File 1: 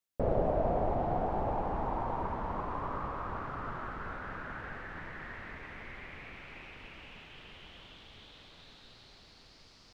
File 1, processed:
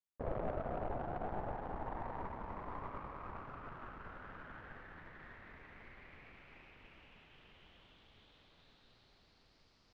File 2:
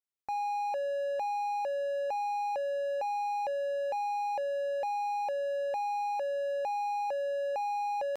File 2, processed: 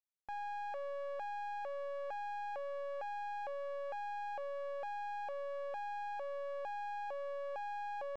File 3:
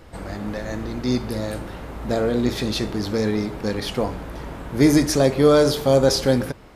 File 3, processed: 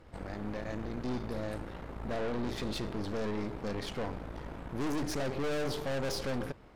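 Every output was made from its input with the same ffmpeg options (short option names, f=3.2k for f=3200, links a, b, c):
-af "aemphasis=mode=reproduction:type=cd,aeval=exprs='(tanh(22.4*val(0)+0.8)-tanh(0.8))/22.4':c=same,volume=-5dB"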